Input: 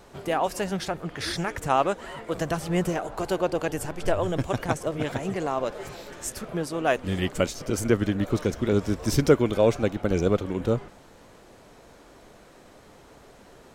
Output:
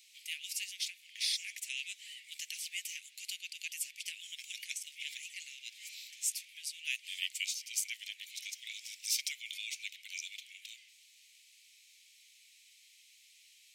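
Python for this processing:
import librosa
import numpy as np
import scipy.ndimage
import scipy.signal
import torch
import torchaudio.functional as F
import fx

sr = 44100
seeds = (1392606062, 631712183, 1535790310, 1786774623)

y = scipy.signal.sosfilt(scipy.signal.butter(12, 2200.0, 'highpass', fs=sr, output='sos'), x)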